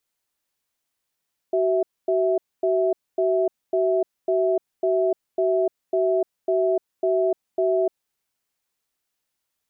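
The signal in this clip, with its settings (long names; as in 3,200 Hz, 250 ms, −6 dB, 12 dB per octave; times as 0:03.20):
tone pair in a cadence 377 Hz, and 656 Hz, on 0.30 s, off 0.25 s, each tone −20.5 dBFS 6.35 s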